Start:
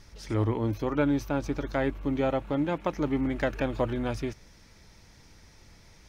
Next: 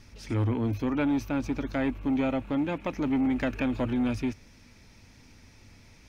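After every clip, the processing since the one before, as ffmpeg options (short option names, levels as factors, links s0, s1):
-filter_complex "[0:a]equalizer=f=100:t=o:w=0.33:g=7,equalizer=f=250:t=o:w=0.33:g=11,equalizer=f=2500:t=o:w=0.33:g=7,acrossover=split=1500[s0][s1];[s0]asoftclip=type=tanh:threshold=0.1[s2];[s2][s1]amix=inputs=2:normalize=0,volume=0.841"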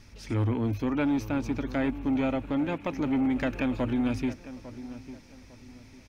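-filter_complex "[0:a]asplit=2[s0][s1];[s1]adelay=851,lowpass=f=1700:p=1,volume=0.2,asplit=2[s2][s3];[s3]adelay=851,lowpass=f=1700:p=1,volume=0.33,asplit=2[s4][s5];[s5]adelay=851,lowpass=f=1700:p=1,volume=0.33[s6];[s0][s2][s4][s6]amix=inputs=4:normalize=0"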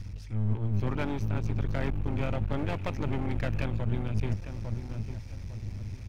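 -af "lowshelf=f=150:t=q:w=3:g=12.5,areverse,acompressor=threshold=0.0631:ratio=16,areverse,aeval=exprs='clip(val(0),-1,0.0075)':c=same,volume=1.26"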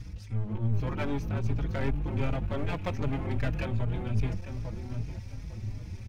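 -filter_complex "[0:a]asplit=2[s0][s1];[s1]adelay=4.5,afreqshift=2.6[s2];[s0][s2]amix=inputs=2:normalize=1,volume=1.41"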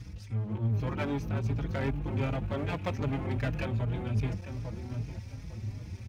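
-af "highpass=61"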